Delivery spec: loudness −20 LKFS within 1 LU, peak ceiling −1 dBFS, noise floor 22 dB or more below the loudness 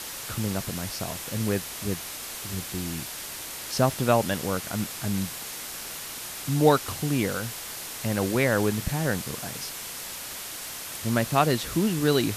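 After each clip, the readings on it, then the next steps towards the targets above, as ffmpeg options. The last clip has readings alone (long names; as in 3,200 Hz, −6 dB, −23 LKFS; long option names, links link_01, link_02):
background noise floor −37 dBFS; target noise floor −50 dBFS; integrated loudness −27.5 LKFS; sample peak −7.5 dBFS; target loudness −20.0 LKFS
→ -af "afftdn=noise_reduction=13:noise_floor=-37"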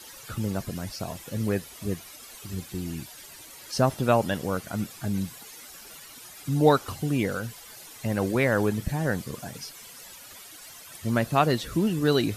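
background noise floor −46 dBFS; target noise floor −50 dBFS
→ -af "afftdn=noise_reduction=6:noise_floor=-46"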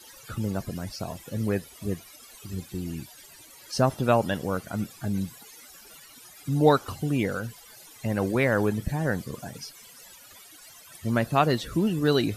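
background noise floor −50 dBFS; integrated loudness −27.5 LKFS; sample peak −7.5 dBFS; target loudness −20.0 LKFS
→ -af "volume=7.5dB,alimiter=limit=-1dB:level=0:latency=1"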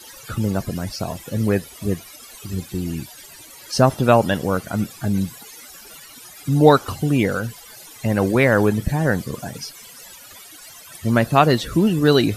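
integrated loudness −20.0 LKFS; sample peak −1.0 dBFS; background noise floor −43 dBFS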